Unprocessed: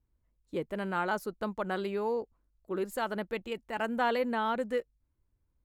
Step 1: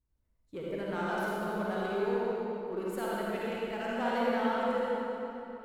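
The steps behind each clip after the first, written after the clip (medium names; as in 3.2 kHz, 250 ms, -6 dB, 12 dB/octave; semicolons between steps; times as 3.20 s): in parallel at -12 dB: wavefolder -30.5 dBFS; on the sum: reverberation RT60 3.4 s, pre-delay 44 ms, DRR -7 dB; trim -8.5 dB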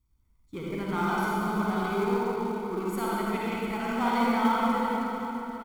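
comb 0.9 ms, depth 74%; in parallel at -4 dB: short-mantissa float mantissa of 2-bit; on the sum: echo whose repeats swap between lows and highs 347 ms, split 1.1 kHz, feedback 53%, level -9 dB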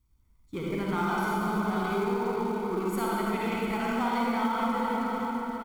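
compression 5:1, threshold -27 dBFS, peak gain reduction 8 dB; trim +2.5 dB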